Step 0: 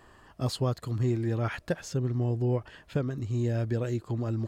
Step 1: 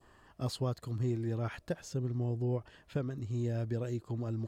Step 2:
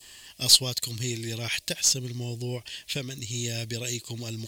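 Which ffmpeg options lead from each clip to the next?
-af "adynamicequalizer=threshold=0.00316:dfrequency=1800:dqfactor=0.79:tfrequency=1800:tqfactor=0.79:attack=5:release=100:ratio=0.375:range=2:mode=cutabove:tftype=bell,volume=0.531"
-af "aexciter=amount=12.1:drive=7.7:freq=2100,aeval=exprs='0.841*(cos(1*acos(clip(val(0)/0.841,-1,1)))-cos(1*PI/2))+0.0188*(cos(6*acos(clip(val(0)/0.841,-1,1)))-cos(6*PI/2))':c=same"

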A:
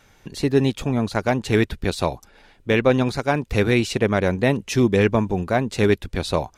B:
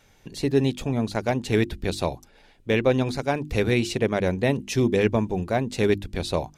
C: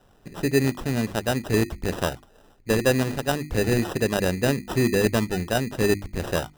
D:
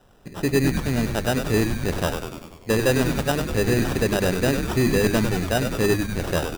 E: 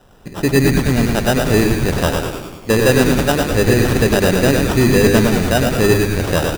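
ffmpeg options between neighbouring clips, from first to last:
-af "equalizer=f=1300:t=o:w=0.94:g=-5,bandreject=f=50:t=h:w=6,bandreject=f=100:t=h:w=6,bandreject=f=150:t=h:w=6,bandreject=f=200:t=h:w=6,bandreject=f=250:t=h:w=6,bandreject=f=300:t=h:w=6,bandreject=f=350:t=h:w=6,volume=0.75"
-af "acrusher=samples=20:mix=1:aa=0.000001"
-filter_complex "[0:a]asplit=9[s0][s1][s2][s3][s4][s5][s6][s7][s8];[s1]adelay=98,afreqshift=-100,volume=0.447[s9];[s2]adelay=196,afreqshift=-200,volume=0.275[s10];[s3]adelay=294,afreqshift=-300,volume=0.172[s11];[s4]adelay=392,afreqshift=-400,volume=0.106[s12];[s5]adelay=490,afreqshift=-500,volume=0.0661[s13];[s6]adelay=588,afreqshift=-600,volume=0.0407[s14];[s7]adelay=686,afreqshift=-700,volume=0.0254[s15];[s8]adelay=784,afreqshift=-800,volume=0.0157[s16];[s0][s9][s10][s11][s12][s13][s14][s15][s16]amix=inputs=9:normalize=0,asoftclip=type=tanh:threshold=0.237,volume=1.26"
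-af "aecho=1:1:114|228|342|456|570:0.531|0.212|0.0849|0.034|0.0136,volume=2.11"

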